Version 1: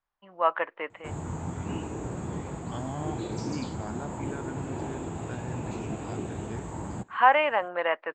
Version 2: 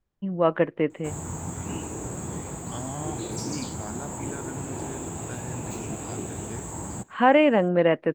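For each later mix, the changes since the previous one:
first voice: remove resonant high-pass 980 Hz, resonance Q 1.7; master: remove air absorption 140 m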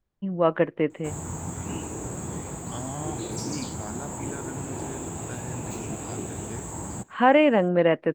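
none

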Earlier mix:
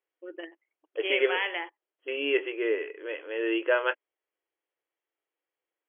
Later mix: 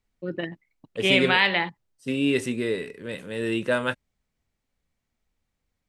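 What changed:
first voice +9.0 dB; master: remove brick-wall FIR band-pass 300–3400 Hz

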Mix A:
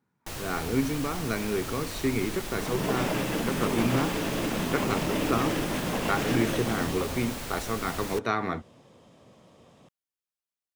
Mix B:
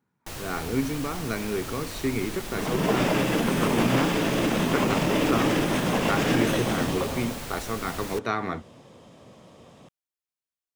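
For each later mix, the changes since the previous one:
second sound +5.5 dB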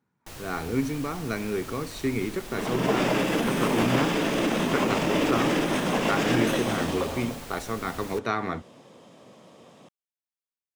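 first sound -5.0 dB; second sound: add HPF 170 Hz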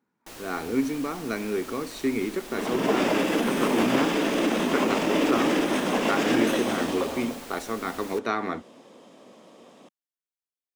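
master: add resonant low shelf 180 Hz -8.5 dB, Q 1.5

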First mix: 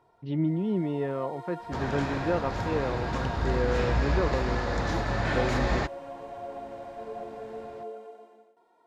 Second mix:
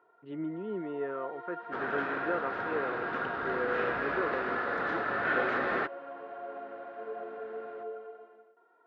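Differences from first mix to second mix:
speech -3.5 dB; second sound: remove LPF 4800 Hz 12 dB/oct; master: add speaker cabinet 360–2700 Hz, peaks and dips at 420 Hz +3 dB, 590 Hz -4 dB, 890 Hz -7 dB, 1400 Hz +9 dB, 2300 Hz -4 dB

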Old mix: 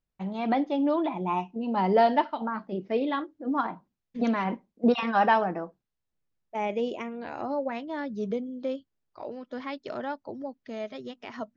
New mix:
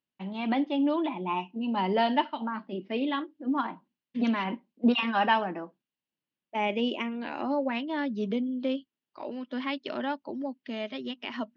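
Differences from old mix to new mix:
second voice +4.0 dB; master: add speaker cabinet 220–5000 Hz, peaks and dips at 250 Hz +4 dB, 470 Hz -7 dB, 710 Hz -6 dB, 1300 Hz -4 dB, 2900 Hz +8 dB

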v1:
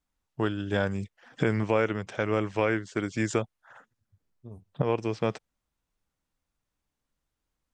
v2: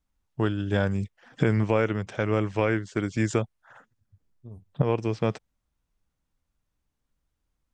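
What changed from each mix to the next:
second voice -3.5 dB; master: add low shelf 190 Hz +7.5 dB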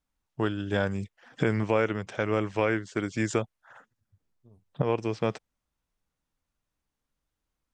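second voice -9.0 dB; master: add low shelf 190 Hz -7.5 dB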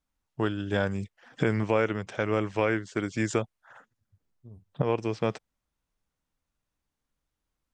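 second voice: add low shelf 340 Hz +11 dB

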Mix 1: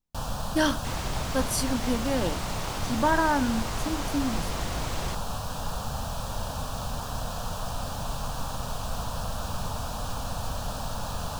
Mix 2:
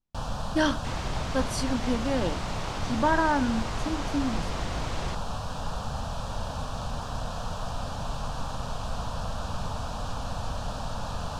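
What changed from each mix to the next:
master: add air absorption 67 m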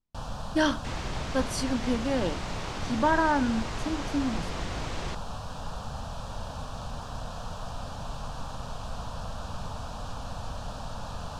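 first sound -4.0 dB

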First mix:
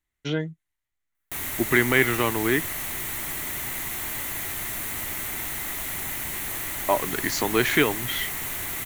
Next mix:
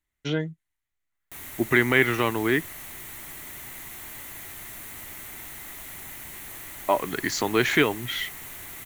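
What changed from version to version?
background -9.0 dB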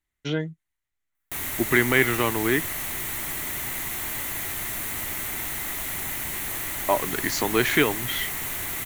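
background +9.5 dB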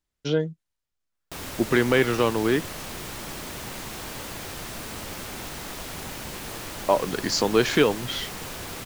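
background: add high shelf 7100 Hz -11 dB; master: add thirty-one-band EQ 200 Hz +6 dB, 500 Hz +9 dB, 2000 Hz -10 dB, 5000 Hz +10 dB, 12500 Hz -5 dB

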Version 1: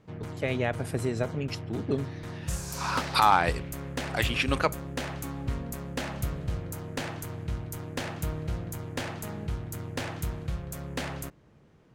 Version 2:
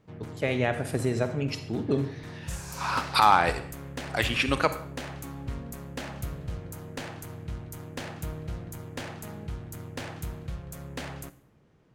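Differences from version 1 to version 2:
background -4.5 dB; reverb: on, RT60 0.60 s

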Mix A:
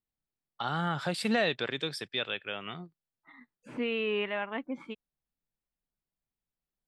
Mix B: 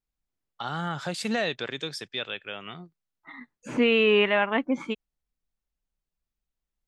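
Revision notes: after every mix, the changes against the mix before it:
second voice +10.5 dB; master: add bell 6500 Hz +11.5 dB 0.34 oct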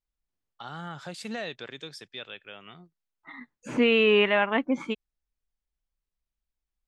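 first voice -7.5 dB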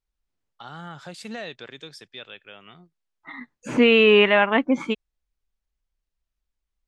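second voice +5.5 dB

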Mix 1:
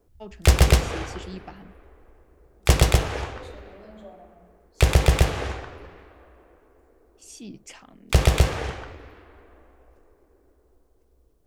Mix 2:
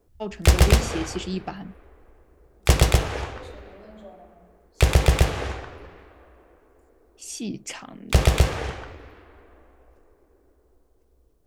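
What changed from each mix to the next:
first voice +9.0 dB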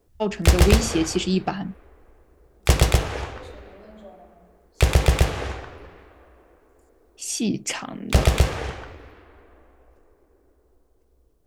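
first voice +7.5 dB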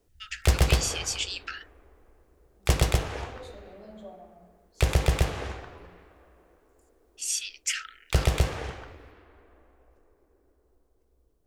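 first voice: add Chebyshev high-pass 1300 Hz, order 10; background -5.5 dB

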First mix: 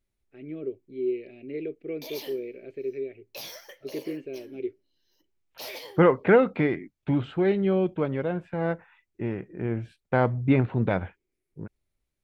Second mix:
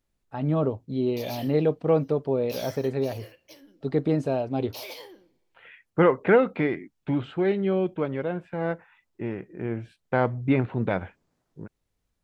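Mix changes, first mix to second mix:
first voice: remove double band-pass 920 Hz, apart 2.6 oct; background: entry -0.85 s; master: add low shelf 110 Hz -6.5 dB

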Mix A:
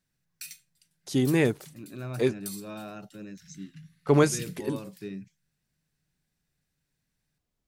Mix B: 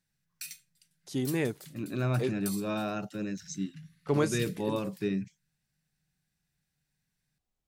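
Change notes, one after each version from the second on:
first voice -7.0 dB; second voice +7.5 dB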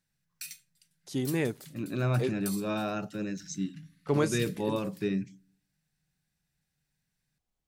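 reverb: on, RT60 0.40 s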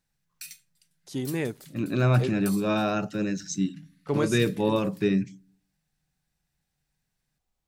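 second voice +6.5 dB

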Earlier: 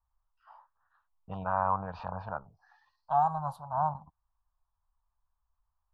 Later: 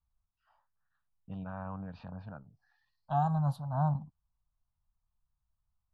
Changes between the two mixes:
first voice -10.0 dB; master: add ten-band EQ 125 Hz +9 dB, 250 Hz +12 dB, 1000 Hz -11 dB, 2000 Hz +5 dB, 4000 Hz +5 dB

